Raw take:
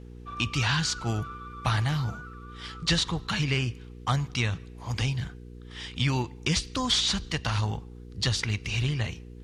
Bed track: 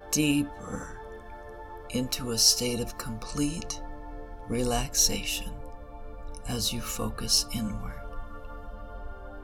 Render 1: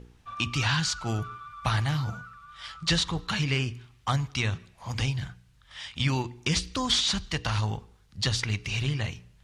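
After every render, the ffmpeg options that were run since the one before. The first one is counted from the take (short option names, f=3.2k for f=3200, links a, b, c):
-af "bandreject=f=60:t=h:w=4,bandreject=f=120:t=h:w=4,bandreject=f=180:t=h:w=4,bandreject=f=240:t=h:w=4,bandreject=f=300:t=h:w=4,bandreject=f=360:t=h:w=4,bandreject=f=420:t=h:w=4,bandreject=f=480:t=h:w=4"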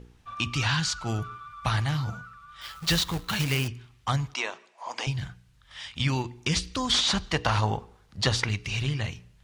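-filter_complex "[0:a]asettb=1/sr,asplit=3[a][b][c];[a]atrim=end=2.614[d];[b]atrim=start=2.61:end=3.68,asetpts=PTS-STARTPTS,afade=t=in:d=0.004:c=qsin,afade=t=out:st=1.066:d=0.004:c=qsin,acrusher=bits=2:mode=log:mix=0:aa=0.000001[e];[c]atrim=start=3.676[f];[d][e]acrossfade=d=0.004:c1=hsin:c2=qsin[g];[g][f]acrossfade=d=0.004:c1=qsin:c2=hsin,asettb=1/sr,asplit=3[h][i][j];[h]atrim=end=4.344[k];[i]atrim=start=4.34:end=5.07,asetpts=PTS-STARTPTS,afade=t=in:d=0.004:c=qsin,afade=t=out:st=0.726:d=0.004:c=qsin,highpass=f=340:w=0.5412,highpass=f=340:w=1.3066,equalizer=f=650:t=q:w=4:g=7,equalizer=f=960:t=q:w=4:g=8,equalizer=f=3.8k:t=q:w=4:g=-4,lowpass=f=8.6k:w=0.5412,lowpass=f=8.6k:w=1.3066[l];[j]atrim=start=5.066[m];[k][l]acrossfade=d=0.004:c1=hsin:c2=qsin[n];[n][m]acrossfade=d=0.004:c1=qsin:c2=hsin,asettb=1/sr,asplit=3[o][p][q];[o]atrim=end=6.944[r];[p]atrim=start=6.94:end=8.49,asetpts=PTS-STARTPTS,afade=t=in:d=0.004:c=qsin,afade=t=out:st=1.546:d=0.004:c=qsin,equalizer=f=680:t=o:w=2.7:g=9[s];[q]atrim=start=8.486[t];[r][s]acrossfade=d=0.004:c1=hsin:c2=qsin[u];[u][t]acrossfade=d=0.004:c1=qsin:c2=hsin"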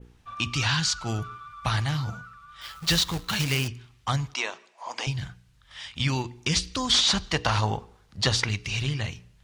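-af "adynamicequalizer=threshold=0.0141:dfrequency=5300:dqfactor=0.76:tfrequency=5300:tqfactor=0.76:attack=5:release=100:ratio=0.375:range=2:mode=boostabove:tftype=bell"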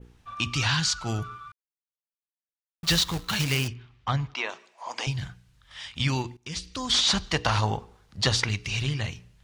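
-filter_complex "[0:a]asplit=3[a][b][c];[a]afade=t=out:st=3.73:d=0.02[d];[b]lowpass=3.4k,afade=t=in:st=3.73:d=0.02,afade=t=out:st=4.48:d=0.02[e];[c]afade=t=in:st=4.48:d=0.02[f];[d][e][f]amix=inputs=3:normalize=0,asplit=4[g][h][i][j];[g]atrim=end=1.52,asetpts=PTS-STARTPTS,afade=t=out:st=1.516:d=0.004:c=hsin[k];[h]atrim=start=1.52:end=2.83,asetpts=PTS-STARTPTS,volume=0[l];[i]atrim=start=2.83:end=6.37,asetpts=PTS-STARTPTS,afade=t=in:d=0.004:c=hsin,afade=t=out:st=3.536:d=0.004:c=hsin:silence=0.11885[m];[j]atrim=start=6.37,asetpts=PTS-STARTPTS,afade=t=in:d=0.76:silence=0.11885[n];[k][l][m][n]concat=n=4:v=0:a=1"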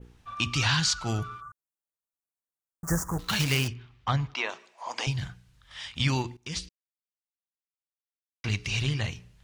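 -filter_complex "[0:a]asplit=3[a][b][c];[a]afade=t=out:st=1.4:d=0.02[d];[b]asuperstop=centerf=3300:order=8:qfactor=0.66,afade=t=in:st=1.4:d=0.02,afade=t=out:st=3.18:d=0.02[e];[c]afade=t=in:st=3.18:d=0.02[f];[d][e][f]amix=inputs=3:normalize=0,asplit=3[g][h][i];[g]atrim=end=6.69,asetpts=PTS-STARTPTS,afade=t=out:st=6.686:d=0.004:c=hsin[j];[h]atrim=start=6.69:end=8.44,asetpts=PTS-STARTPTS,volume=0[k];[i]atrim=start=8.44,asetpts=PTS-STARTPTS,afade=t=in:d=0.004:c=hsin[l];[j][k][l]concat=n=3:v=0:a=1"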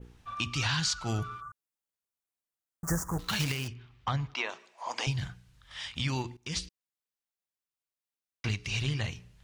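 -af "alimiter=limit=-19.5dB:level=0:latency=1:release=479"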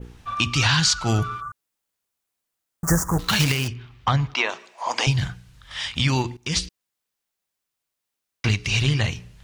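-af "volume=10.5dB"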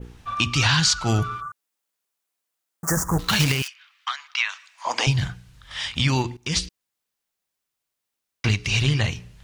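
-filter_complex "[0:a]asettb=1/sr,asplit=3[a][b][c];[a]atrim=end=1.464[d];[b]atrim=start=1.46:end=2.97,asetpts=PTS-STARTPTS,afade=t=in:d=0.004:c=qsin,afade=t=out:st=1.506:d=0.004:c=qsin,highpass=f=300:p=1[e];[c]atrim=start=2.966[f];[d][e]acrossfade=d=0.004:c1=hsin:c2=qsin[g];[g][f]acrossfade=d=0.004:c1=qsin:c2=hsin,asettb=1/sr,asplit=3[h][i][j];[h]atrim=end=3.624[k];[i]atrim=start=3.62:end=4.85,asetpts=PTS-STARTPTS,afade=t=in:d=0.004:c=qsin,afade=t=out:st=1.226:d=0.004:c=qsin,highpass=f=1.3k:w=0.5412,highpass=f=1.3k:w=1.3066[l];[j]atrim=start=4.846[m];[k][l]acrossfade=d=0.004:c1=hsin:c2=qsin[n];[n][m]acrossfade=d=0.004:c1=qsin:c2=hsin"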